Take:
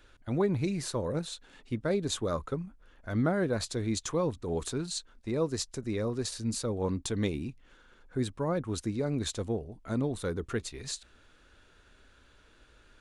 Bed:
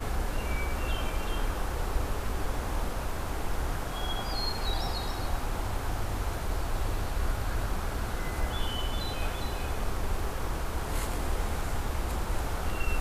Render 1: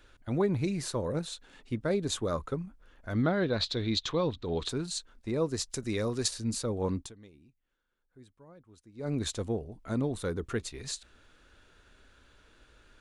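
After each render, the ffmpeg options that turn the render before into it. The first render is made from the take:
ffmpeg -i in.wav -filter_complex "[0:a]asettb=1/sr,asplit=3[link_01][link_02][link_03];[link_01]atrim=end=3.234[link_04];[link_02]atrim=start=3.23:end=4.69,asetpts=PTS-STARTPTS,afade=type=in:duration=0.004:curve=qsin,afade=type=out:start_time=1.456:duration=0.004:curve=qsin,lowpass=frequency=3800:width_type=q:width=3.8[link_05];[link_03]atrim=start=4.686[link_06];[link_04][link_05]acrossfade=duration=0.004:curve1=hsin:curve2=qsin[link_07];[link_07][link_06]acrossfade=duration=0.004:curve1=qsin:curve2=hsin,asettb=1/sr,asplit=3[link_08][link_09][link_10];[link_08]atrim=end=5.704[link_11];[link_09]atrim=start=5.7:end=6.28,asetpts=PTS-STARTPTS,afade=type=in:duration=0.004:curve=qsin,afade=type=out:start_time=0.576:duration=0.004:curve=qsin,highshelf=frequency=2000:gain=9[link_12];[link_10]atrim=start=6.276[link_13];[link_11][link_12]acrossfade=duration=0.004:curve1=hsin:curve2=qsin[link_14];[link_14][link_13]acrossfade=duration=0.004:curve1=qsin:curve2=hsin,asplit=3[link_15][link_16][link_17];[link_15]atrim=end=7.17,asetpts=PTS-STARTPTS,afade=type=out:start_time=6.99:duration=0.18:curve=qua:silence=0.0668344[link_18];[link_16]atrim=start=7.17:end=8.91,asetpts=PTS-STARTPTS,volume=-23.5dB[link_19];[link_17]atrim=start=8.91,asetpts=PTS-STARTPTS,afade=type=in:duration=0.18:curve=qua:silence=0.0668344[link_20];[link_18][link_19][link_20]concat=n=3:v=0:a=1" out.wav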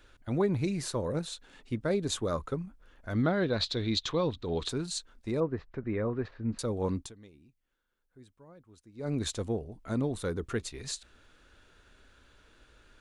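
ffmpeg -i in.wav -filter_complex "[0:a]asettb=1/sr,asplit=3[link_01][link_02][link_03];[link_01]atrim=end=5.404[link_04];[link_02]atrim=start=5.4:end=6.59,asetpts=PTS-STARTPTS,afade=type=in:duration=0.004:curve=qsin,afade=type=out:start_time=1.186:duration=0.004:curve=qsin,lowpass=frequency=2000:width=0.5412,lowpass=frequency=2000:width=1.3066[link_05];[link_03]atrim=start=6.586[link_06];[link_04][link_05]acrossfade=duration=0.004:curve1=hsin:curve2=qsin[link_07];[link_07][link_06]acrossfade=duration=0.004:curve1=qsin:curve2=hsin" out.wav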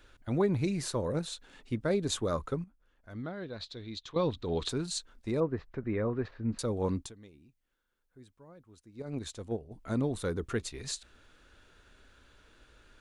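ffmpeg -i in.wav -filter_complex "[0:a]asettb=1/sr,asplit=3[link_01][link_02][link_03];[link_01]atrim=end=9.024[link_04];[link_02]atrim=start=9.02:end=9.71,asetpts=PTS-STARTPTS,afade=type=in:duration=0.004:curve=qsin,afade=type=out:start_time=0.686:duration=0.004:curve=qsin,agate=range=-8dB:threshold=-30dB:ratio=16:release=100:detection=peak[link_05];[link_03]atrim=start=9.706[link_06];[link_04][link_05]acrossfade=duration=0.004:curve1=hsin:curve2=qsin[link_07];[link_07][link_06]acrossfade=duration=0.004:curve1=qsin:curve2=hsin,asplit=3[link_08][link_09][link_10];[link_08]atrim=end=2.642[link_11];[link_09]atrim=start=2.638:end=4.162,asetpts=PTS-STARTPTS,volume=-12dB[link_12];[link_10]atrim=start=4.158[link_13];[link_11][link_12]acrossfade=duration=0.004:curve1=hsin:curve2=hsin[link_14];[link_14][link_13]acrossfade=duration=0.004:curve1=hsin:curve2=hsin" out.wav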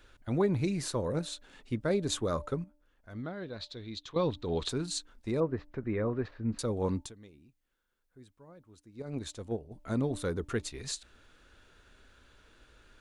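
ffmpeg -i in.wav -af "bandreject=frequency=295.2:width_type=h:width=4,bandreject=frequency=590.4:width_type=h:width=4,bandreject=frequency=885.6:width_type=h:width=4" out.wav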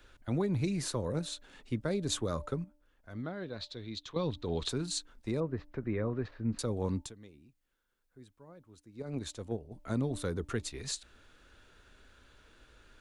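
ffmpeg -i in.wav -filter_complex "[0:a]acrossover=split=210|3000[link_01][link_02][link_03];[link_02]acompressor=threshold=-34dB:ratio=2.5[link_04];[link_01][link_04][link_03]amix=inputs=3:normalize=0" out.wav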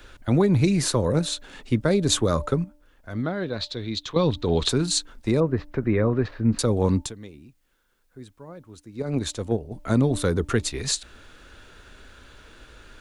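ffmpeg -i in.wav -af "volume=12dB" out.wav

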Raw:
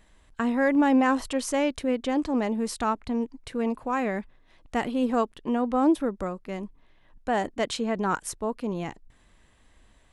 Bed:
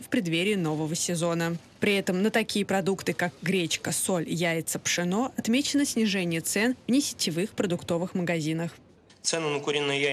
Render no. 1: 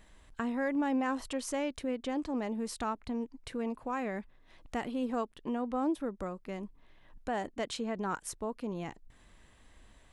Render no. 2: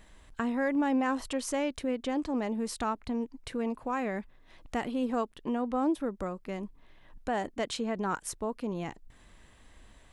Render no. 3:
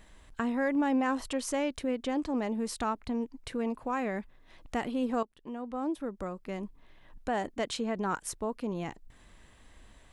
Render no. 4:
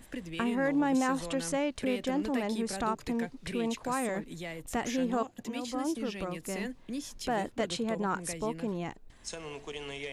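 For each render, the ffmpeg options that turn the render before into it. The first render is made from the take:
ffmpeg -i in.wav -af "acompressor=threshold=-46dB:ratio=1.5" out.wav
ffmpeg -i in.wav -af "volume=3dB" out.wav
ffmpeg -i in.wav -filter_complex "[0:a]asplit=2[link_01][link_02];[link_01]atrim=end=5.23,asetpts=PTS-STARTPTS,afade=type=out:start_time=5.226:duration=0.004:curve=hsin:silence=0.211349[link_03];[link_02]atrim=start=5.23,asetpts=PTS-STARTPTS,afade=type=in:duration=1.38:silence=0.211349[link_04];[link_03][link_04]concat=n=2:v=0:a=1" out.wav
ffmpeg -i in.wav -i bed.wav -filter_complex "[1:a]volume=-14dB[link_01];[0:a][link_01]amix=inputs=2:normalize=0" out.wav

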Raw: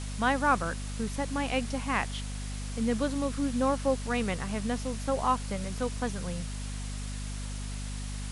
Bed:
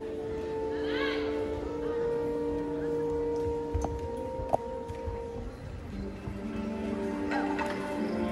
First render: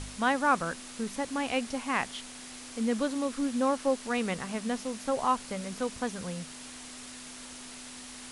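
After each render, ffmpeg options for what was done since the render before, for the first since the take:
ffmpeg -i in.wav -af "bandreject=frequency=50:width_type=h:width=4,bandreject=frequency=100:width_type=h:width=4,bandreject=frequency=150:width_type=h:width=4,bandreject=frequency=200:width_type=h:width=4" out.wav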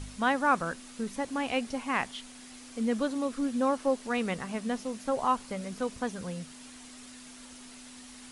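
ffmpeg -i in.wav -af "afftdn=noise_reduction=6:noise_floor=-45" out.wav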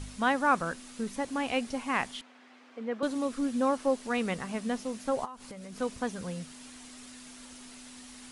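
ffmpeg -i in.wav -filter_complex "[0:a]asettb=1/sr,asplit=3[link_01][link_02][link_03];[link_01]atrim=end=2.214[link_04];[link_02]atrim=start=2.21:end=3.03,asetpts=PTS-STARTPTS,afade=type=in:duration=0.004:curve=qsin,afade=type=out:start_time=0.816:duration=0.004:curve=qsin,highpass=390,lowpass=2100[link_05];[link_03]atrim=start=3.026[link_06];[link_04][link_05]acrossfade=duration=0.004:curve1=hsin:curve2=qsin[link_07];[link_07][link_06]acrossfade=duration=0.004:curve1=qsin:curve2=hsin,asplit=3[link_08][link_09][link_10];[link_08]afade=type=out:start_time=5.24:duration=0.02[link_11];[link_09]acompressor=threshold=-39dB:ratio=20:attack=3.2:release=140:knee=1:detection=peak,afade=type=in:start_time=5.24:duration=0.02,afade=type=out:start_time=5.76:duration=0.02[link_12];[link_10]afade=type=in:start_time=5.76:duration=0.02[link_13];[link_11][link_12][link_13]amix=inputs=3:normalize=0" out.wav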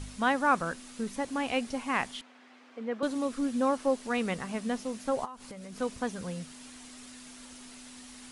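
ffmpeg -i in.wav -af anull out.wav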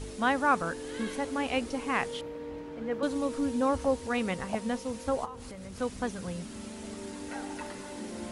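ffmpeg -i in.wav -i bed.wav -filter_complex "[1:a]volume=-8.5dB[link_01];[0:a][link_01]amix=inputs=2:normalize=0" out.wav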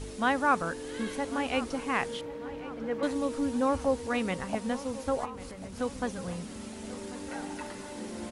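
ffmpeg -i in.wav -filter_complex "[0:a]asplit=2[link_01][link_02];[link_02]adelay=1094,lowpass=frequency=3300:poles=1,volume=-16dB,asplit=2[link_03][link_04];[link_04]adelay=1094,lowpass=frequency=3300:poles=1,volume=0.52,asplit=2[link_05][link_06];[link_06]adelay=1094,lowpass=frequency=3300:poles=1,volume=0.52,asplit=2[link_07][link_08];[link_08]adelay=1094,lowpass=frequency=3300:poles=1,volume=0.52,asplit=2[link_09][link_10];[link_10]adelay=1094,lowpass=frequency=3300:poles=1,volume=0.52[link_11];[link_01][link_03][link_05][link_07][link_09][link_11]amix=inputs=6:normalize=0" out.wav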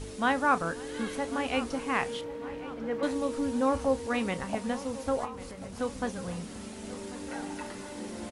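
ffmpeg -i in.wav -filter_complex "[0:a]asplit=2[link_01][link_02];[link_02]adelay=30,volume=-13.5dB[link_03];[link_01][link_03]amix=inputs=2:normalize=0,aecho=1:1:531:0.0708" out.wav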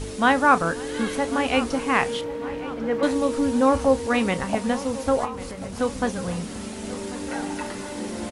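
ffmpeg -i in.wav -af "volume=8dB" out.wav

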